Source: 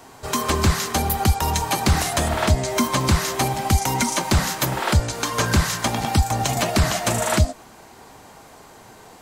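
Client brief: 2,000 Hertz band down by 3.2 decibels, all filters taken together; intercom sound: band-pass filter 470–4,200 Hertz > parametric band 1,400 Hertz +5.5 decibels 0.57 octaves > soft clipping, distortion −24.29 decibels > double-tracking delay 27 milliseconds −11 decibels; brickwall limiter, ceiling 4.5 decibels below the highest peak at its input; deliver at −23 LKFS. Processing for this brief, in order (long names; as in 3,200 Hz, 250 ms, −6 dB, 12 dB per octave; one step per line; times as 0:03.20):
parametric band 2,000 Hz −8 dB
brickwall limiter −12 dBFS
band-pass filter 470–4,200 Hz
parametric band 1,400 Hz +5.5 dB 0.57 octaves
soft clipping −14.5 dBFS
double-tracking delay 27 ms −11 dB
level +4.5 dB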